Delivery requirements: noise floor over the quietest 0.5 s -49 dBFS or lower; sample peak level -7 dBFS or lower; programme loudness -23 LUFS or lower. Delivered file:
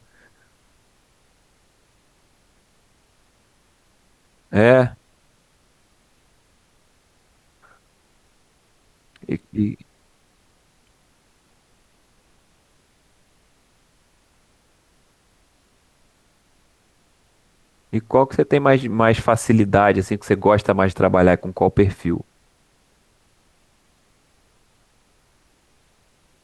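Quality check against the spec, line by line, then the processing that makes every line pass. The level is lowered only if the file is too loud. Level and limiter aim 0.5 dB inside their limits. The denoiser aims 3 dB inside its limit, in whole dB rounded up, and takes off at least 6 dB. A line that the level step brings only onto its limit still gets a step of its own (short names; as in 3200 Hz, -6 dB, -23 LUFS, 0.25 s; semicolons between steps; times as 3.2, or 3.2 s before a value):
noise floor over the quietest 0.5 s -60 dBFS: OK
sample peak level -2.0 dBFS: fail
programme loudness -18.0 LUFS: fail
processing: gain -5.5 dB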